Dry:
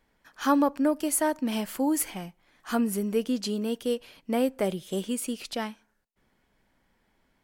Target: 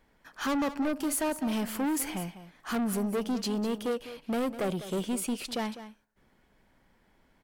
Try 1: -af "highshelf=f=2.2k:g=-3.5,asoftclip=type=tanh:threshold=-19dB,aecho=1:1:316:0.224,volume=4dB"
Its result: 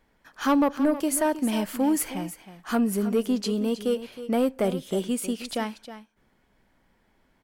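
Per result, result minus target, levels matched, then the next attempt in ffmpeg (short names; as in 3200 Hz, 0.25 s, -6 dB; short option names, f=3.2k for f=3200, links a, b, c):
echo 0.115 s late; soft clip: distortion -10 dB
-af "highshelf=f=2.2k:g=-3.5,asoftclip=type=tanh:threshold=-19dB,aecho=1:1:201:0.224,volume=4dB"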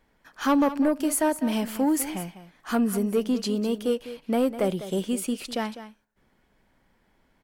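soft clip: distortion -10 dB
-af "highshelf=f=2.2k:g=-3.5,asoftclip=type=tanh:threshold=-30.5dB,aecho=1:1:201:0.224,volume=4dB"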